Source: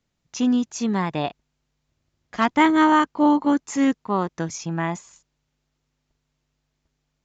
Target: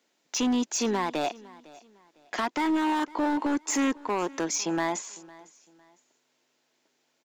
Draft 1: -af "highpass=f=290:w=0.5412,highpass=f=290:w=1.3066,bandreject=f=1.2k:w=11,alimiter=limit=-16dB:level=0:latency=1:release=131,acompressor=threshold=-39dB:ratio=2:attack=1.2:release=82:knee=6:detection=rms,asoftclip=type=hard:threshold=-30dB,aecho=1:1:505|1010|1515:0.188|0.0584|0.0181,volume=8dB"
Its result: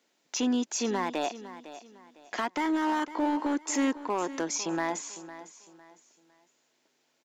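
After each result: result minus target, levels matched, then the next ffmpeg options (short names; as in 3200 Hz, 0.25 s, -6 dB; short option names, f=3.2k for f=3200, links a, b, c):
echo-to-direct +7 dB; compressor: peak gain reduction +3.5 dB
-af "highpass=f=290:w=0.5412,highpass=f=290:w=1.3066,bandreject=f=1.2k:w=11,alimiter=limit=-16dB:level=0:latency=1:release=131,acompressor=threshold=-39dB:ratio=2:attack=1.2:release=82:knee=6:detection=rms,asoftclip=type=hard:threshold=-30dB,aecho=1:1:505|1010:0.0841|0.0261,volume=8dB"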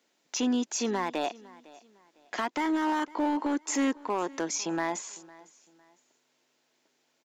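compressor: peak gain reduction +3.5 dB
-af "highpass=f=290:w=0.5412,highpass=f=290:w=1.3066,bandreject=f=1.2k:w=11,alimiter=limit=-16dB:level=0:latency=1:release=131,acompressor=threshold=-32dB:ratio=2:attack=1.2:release=82:knee=6:detection=rms,asoftclip=type=hard:threshold=-30dB,aecho=1:1:505|1010:0.0841|0.0261,volume=8dB"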